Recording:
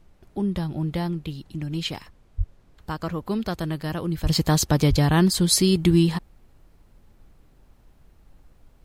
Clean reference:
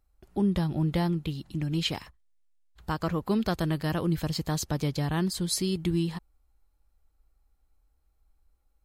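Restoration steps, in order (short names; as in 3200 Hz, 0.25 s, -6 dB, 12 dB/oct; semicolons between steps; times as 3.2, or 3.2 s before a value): 2.37–2.49 HPF 140 Hz 24 dB/oct; 4.22–4.34 HPF 140 Hz 24 dB/oct; 4.89–5.01 HPF 140 Hz 24 dB/oct; expander -47 dBFS, range -21 dB; 4.27 gain correction -9.5 dB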